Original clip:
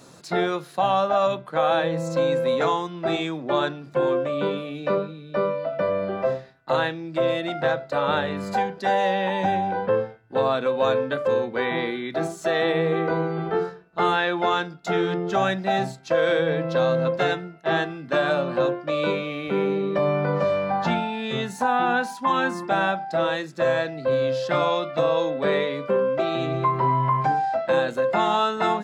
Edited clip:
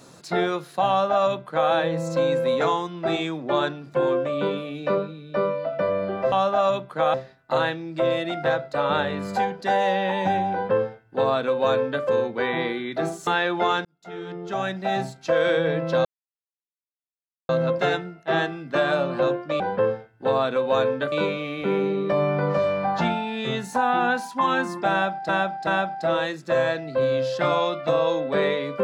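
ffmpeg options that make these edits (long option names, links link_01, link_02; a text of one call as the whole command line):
ffmpeg -i in.wav -filter_complex "[0:a]asplit=10[link_01][link_02][link_03][link_04][link_05][link_06][link_07][link_08][link_09][link_10];[link_01]atrim=end=6.322[link_11];[link_02]atrim=start=0.888:end=1.712[link_12];[link_03]atrim=start=6.318:end=12.452[link_13];[link_04]atrim=start=14.088:end=14.67,asetpts=PTS-STARTPTS,afade=type=out:start_time=0.578:duration=0.004:curve=hsin[link_14];[link_05]atrim=start=14.67:end=16.87,asetpts=PTS-STARTPTS,afade=type=in:duration=1.35,afade=type=out:start_time=2.196:duration=0.004:curve=hsin,apad=pad_dur=1.44[link_15];[link_06]atrim=start=16.87:end=18.982,asetpts=PTS-STARTPTS,afade=type=in:duration=0.004:curve=hsin[link_16];[link_07]atrim=start=9.698:end=11.222[link_17];[link_08]atrim=start=18.978:end=23.152[link_18];[link_09]atrim=start=22.768:end=23.152[link_19];[link_10]atrim=start=22.768[link_20];[link_11][link_12]acrossfade=duration=0.004:curve1=hsin:curve2=hsin[link_21];[link_21][link_13]acrossfade=duration=0.004:curve1=hsin:curve2=hsin[link_22];[link_14][link_15][link_16]concat=n=3:v=0:a=1[link_23];[link_22][link_23]acrossfade=duration=0.004:curve1=hsin:curve2=hsin[link_24];[link_24][link_17]acrossfade=duration=0.004:curve1=hsin:curve2=hsin[link_25];[link_25][link_18]acrossfade=duration=0.004:curve1=hsin:curve2=hsin[link_26];[link_26][link_19]acrossfade=duration=0.004:curve1=hsin:curve2=hsin[link_27];[link_27][link_20]acrossfade=duration=0.004:curve1=hsin:curve2=hsin" out.wav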